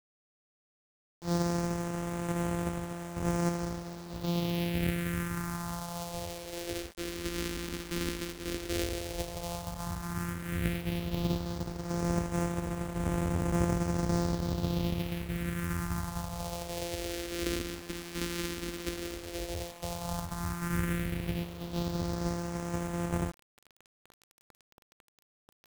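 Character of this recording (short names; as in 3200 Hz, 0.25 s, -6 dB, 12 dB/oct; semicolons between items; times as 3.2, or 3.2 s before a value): a buzz of ramps at a fixed pitch in blocks of 256 samples; phasing stages 4, 0.096 Hz, lowest notch 120–4200 Hz; a quantiser's noise floor 8-bit, dither none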